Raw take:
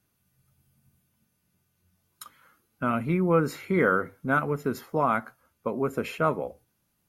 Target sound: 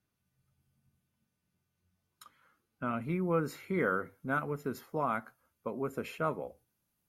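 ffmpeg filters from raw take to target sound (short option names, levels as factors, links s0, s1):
-af "asetnsamples=n=441:p=0,asendcmd='3.02 highshelf g 3',highshelf=f=9800:g=-11,volume=0.398"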